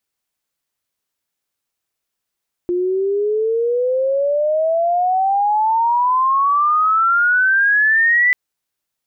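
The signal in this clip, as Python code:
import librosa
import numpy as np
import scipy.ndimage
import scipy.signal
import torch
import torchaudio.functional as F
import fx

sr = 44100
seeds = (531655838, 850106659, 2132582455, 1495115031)

y = fx.chirp(sr, length_s=5.64, from_hz=350.0, to_hz=2000.0, law='logarithmic', from_db=-15.5, to_db=-10.5)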